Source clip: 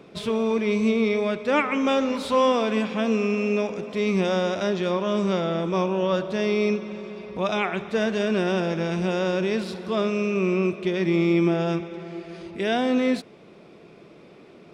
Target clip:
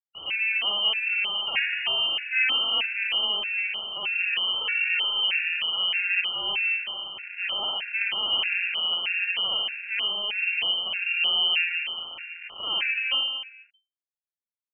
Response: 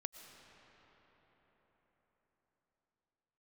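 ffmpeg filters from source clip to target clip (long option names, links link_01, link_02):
-filter_complex "[0:a]acrusher=bits=3:dc=4:mix=0:aa=0.000001,lowpass=frequency=2600:width_type=q:width=0.5098,lowpass=frequency=2600:width_type=q:width=0.6013,lowpass=frequency=2600:width_type=q:width=0.9,lowpass=frequency=2600:width_type=q:width=2.563,afreqshift=-3100,asettb=1/sr,asplit=3[link_01][link_02][link_03];[link_01]atrim=end=4.554[link_04];[link_02]atrim=start=4.55:end=5.25,asetpts=PTS-STARTPTS,afade=type=in:duration=0.004:curve=qsin,afade=type=out:start_time=0.696:duration=0.004:curve=qsin,aecho=1:1:2.2:0.93,atrim=end_sample=30870[link_05];[link_03]atrim=start=5.246[link_06];[link_04][link_05]acrossfade=duration=0.004:curve1=hsin:curve2=qsin[link_07];[link_07][link_06]acrossfade=duration=0.004:curve1=qsin:curve2=hsin,aecho=1:1:60|135|228.8|345.9|492.4:0.631|0.398|0.251|0.158|0.1,afftfilt=real='re*gt(sin(2*PI*1.6*pts/sr)*(1-2*mod(floor(b*sr/1024/1400),2)),0)':imag='im*gt(sin(2*PI*1.6*pts/sr)*(1-2*mod(floor(b*sr/1024/1400),2)),0)':win_size=1024:overlap=0.75"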